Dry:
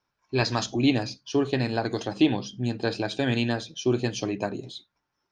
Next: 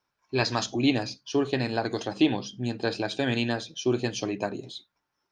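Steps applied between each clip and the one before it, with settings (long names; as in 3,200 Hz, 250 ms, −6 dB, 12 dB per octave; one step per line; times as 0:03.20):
low-shelf EQ 190 Hz −5 dB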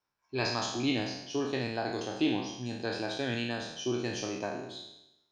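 peak hold with a decay on every bin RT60 0.88 s
level −8 dB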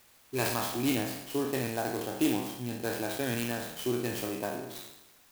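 in parallel at −9.5 dB: bit-depth reduction 8 bits, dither triangular
on the sum: converter with an unsteady clock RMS 0.052 ms
level −1.5 dB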